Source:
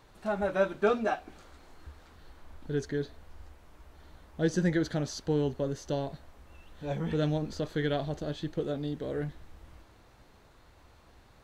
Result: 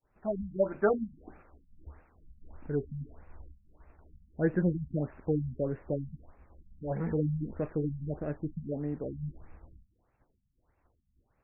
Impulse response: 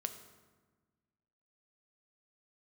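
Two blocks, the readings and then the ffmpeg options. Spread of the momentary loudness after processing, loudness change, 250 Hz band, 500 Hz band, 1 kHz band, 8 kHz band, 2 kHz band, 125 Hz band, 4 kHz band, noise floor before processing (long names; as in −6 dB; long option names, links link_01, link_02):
14 LU, −1.5 dB, −1.0 dB, −2.0 dB, −7.0 dB, below −30 dB, −7.0 dB, 0.0 dB, below −40 dB, −59 dBFS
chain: -af "agate=range=-33dB:threshold=-47dB:ratio=3:detection=peak,afftfilt=real='re*lt(b*sr/1024,220*pow(2800/220,0.5+0.5*sin(2*PI*1.6*pts/sr)))':imag='im*lt(b*sr/1024,220*pow(2800/220,0.5+0.5*sin(2*PI*1.6*pts/sr)))':win_size=1024:overlap=0.75"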